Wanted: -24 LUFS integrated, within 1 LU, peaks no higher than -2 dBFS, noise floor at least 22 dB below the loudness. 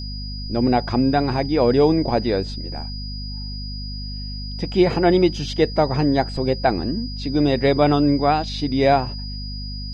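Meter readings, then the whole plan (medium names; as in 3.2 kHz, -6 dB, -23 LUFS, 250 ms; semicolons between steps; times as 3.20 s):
hum 50 Hz; highest harmonic 250 Hz; hum level -28 dBFS; steady tone 4.9 kHz; tone level -34 dBFS; loudness -20.0 LUFS; peak level -3.5 dBFS; loudness target -24.0 LUFS
-> hum notches 50/100/150/200/250 Hz; band-stop 4.9 kHz, Q 30; trim -4 dB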